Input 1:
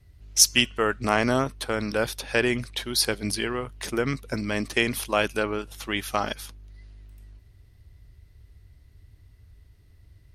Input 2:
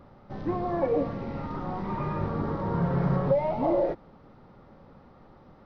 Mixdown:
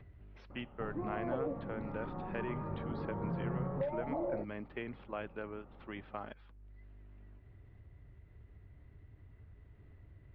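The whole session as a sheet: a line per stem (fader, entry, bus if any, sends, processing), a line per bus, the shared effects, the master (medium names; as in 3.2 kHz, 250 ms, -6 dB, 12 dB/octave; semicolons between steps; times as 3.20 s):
-15.5 dB, 0.00 s, no send, three bands compressed up and down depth 40%
+2.0 dB, 0.50 s, no send, compression 1.5:1, threshold -37 dBFS, peak gain reduction 6.5 dB; auto duck -8 dB, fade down 1.00 s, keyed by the first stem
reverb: none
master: upward compressor, threshold -48 dBFS; Gaussian low-pass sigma 3.8 samples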